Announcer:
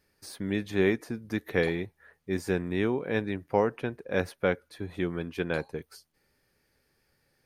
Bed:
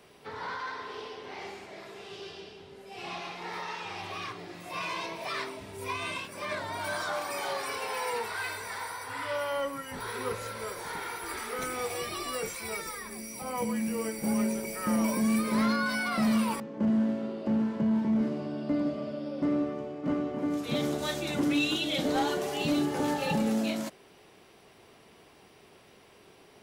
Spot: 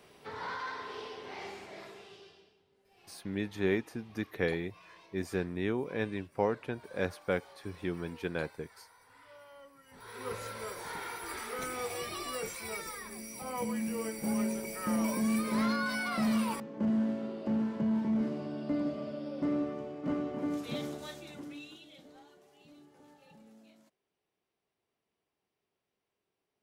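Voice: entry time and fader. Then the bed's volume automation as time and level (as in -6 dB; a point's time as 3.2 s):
2.85 s, -5.0 dB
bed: 1.84 s -2 dB
2.64 s -22.5 dB
9.75 s -22.5 dB
10.35 s -3.5 dB
20.53 s -3.5 dB
22.27 s -30 dB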